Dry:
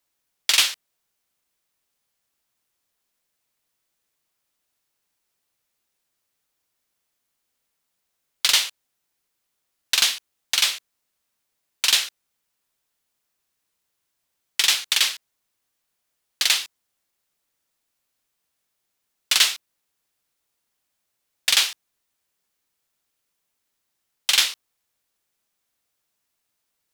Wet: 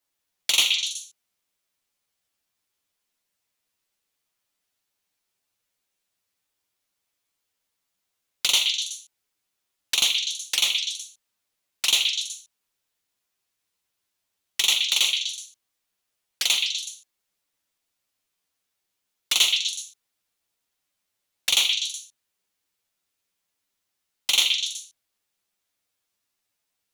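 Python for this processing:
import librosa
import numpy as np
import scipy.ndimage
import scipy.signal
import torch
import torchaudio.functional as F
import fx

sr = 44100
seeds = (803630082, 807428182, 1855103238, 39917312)

y = fx.env_flanger(x, sr, rest_ms=10.6, full_db=-20.5)
y = fx.echo_stepped(y, sr, ms=124, hz=2900.0, octaves=0.7, feedback_pct=70, wet_db=-2.5)
y = fx.spec_repair(y, sr, seeds[0], start_s=0.78, length_s=0.21, low_hz=360.0, high_hz=2500.0, source='both')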